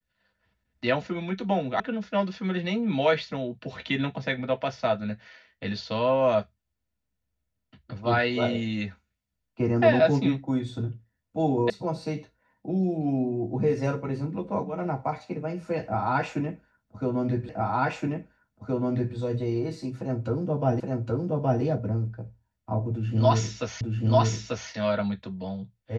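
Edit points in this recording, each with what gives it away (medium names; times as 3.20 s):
1.80 s: sound stops dead
11.70 s: sound stops dead
17.49 s: repeat of the last 1.67 s
20.80 s: repeat of the last 0.82 s
23.81 s: repeat of the last 0.89 s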